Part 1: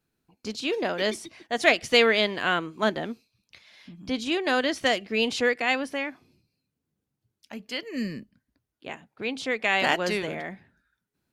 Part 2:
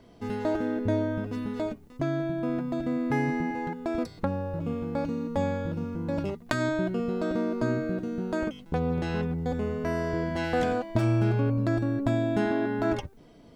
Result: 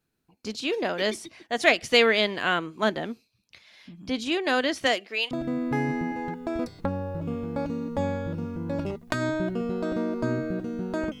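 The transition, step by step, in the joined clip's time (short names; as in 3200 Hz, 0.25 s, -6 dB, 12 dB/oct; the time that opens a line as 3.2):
part 1
4.86–5.31 HPF 170 Hz -> 1300 Hz
5.31 switch to part 2 from 2.7 s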